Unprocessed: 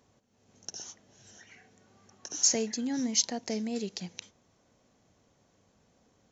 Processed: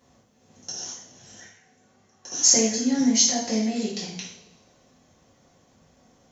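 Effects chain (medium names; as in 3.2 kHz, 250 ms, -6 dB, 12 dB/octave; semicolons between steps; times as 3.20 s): 1.46–2.28 s: level held to a coarse grid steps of 23 dB; two-slope reverb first 0.58 s, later 1.7 s, from -19 dB, DRR -7.5 dB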